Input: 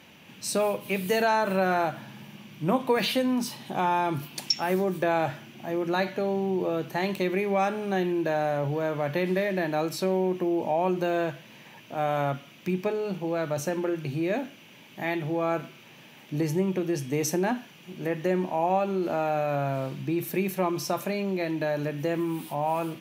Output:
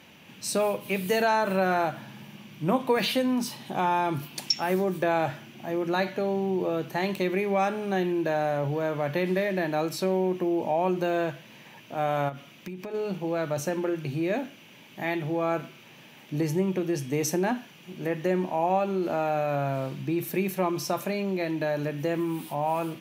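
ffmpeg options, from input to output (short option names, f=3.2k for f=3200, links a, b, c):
-filter_complex "[0:a]asplit=3[a][b][c];[a]afade=t=out:st=12.28:d=0.02[d];[b]acompressor=threshold=-33dB:ratio=10:attack=3.2:release=140:knee=1:detection=peak,afade=t=in:st=12.28:d=0.02,afade=t=out:st=12.93:d=0.02[e];[c]afade=t=in:st=12.93:d=0.02[f];[d][e][f]amix=inputs=3:normalize=0"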